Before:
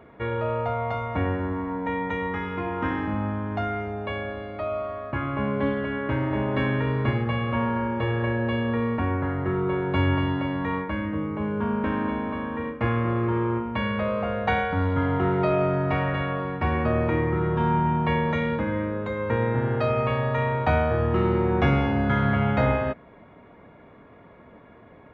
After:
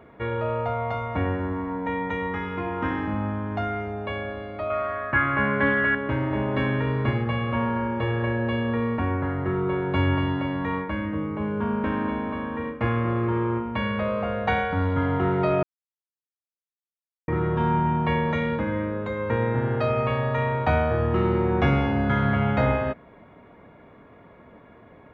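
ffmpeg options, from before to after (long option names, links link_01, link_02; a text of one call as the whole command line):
ffmpeg -i in.wav -filter_complex "[0:a]asettb=1/sr,asplit=3[link_01][link_02][link_03];[link_01]atrim=end=4.704[link_04];[link_02]atrim=start=4.7:end=5.95,asetpts=PTS-STARTPTS,afade=type=in:duration=0.004:curve=qsin,afade=type=out:start_time=1.246:duration=0.004:curve=qsin,equalizer=frequency=1700:width_type=o:width=0.93:gain=15[link_05];[link_03]atrim=start=5.946[link_06];[link_04][link_05]acrossfade=duration=0.004:curve1=hsin:curve2=qsin[link_07];[link_07][link_06]acrossfade=duration=0.004:curve1=qsin:curve2=hsin,asplit=3[link_08][link_09][link_10];[link_08]atrim=end=15.63,asetpts=PTS-STARTPTS,afade=type=out:start_time=15.626:duration=0.004:curve=hsin[link_11];[link_09]atrim=start=15.63:end=17.28,asetpts=PTS-STARTPTS,volume=0[link_12];[link_10]atrim=start=17.28,asetpts=PTS-STARTPTS,afade=type=in:duration=0.004:curve=hsin[link_13];[link_11][link_12][link_13]concat=n=3:v=0:a=1" out.wav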